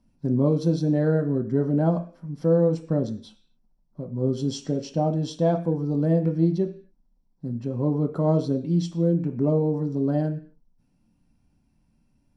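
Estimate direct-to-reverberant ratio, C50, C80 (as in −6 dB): 4.5 dB, 13.0 dB, 17.5 dB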